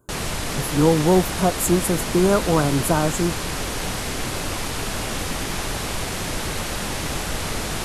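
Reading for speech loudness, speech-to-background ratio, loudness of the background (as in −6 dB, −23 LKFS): −20.5 LKFS, 6.0 dB, −26.5 LKFS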